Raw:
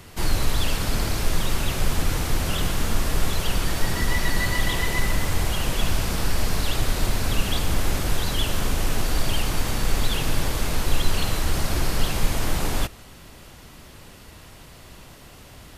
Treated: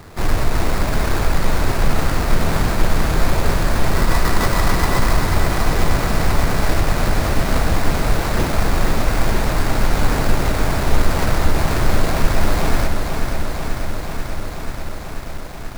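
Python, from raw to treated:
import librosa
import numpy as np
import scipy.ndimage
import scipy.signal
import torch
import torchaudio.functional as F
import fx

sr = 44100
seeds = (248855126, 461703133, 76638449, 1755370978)

y = fx.peak_eq(x, sr, hz=660.0, db=5.0, octaves=0.22)
y = fx.sample_hold(y, sr, seeds[0], rate_hz=3100.0, jitter_pct=20)
y = fx.echo_crushed(y, sr, ms=487, feedback_pct=80, bits=8, wet_db=-6.5)
y = y * 10.0 ** (4.5 / 20.0)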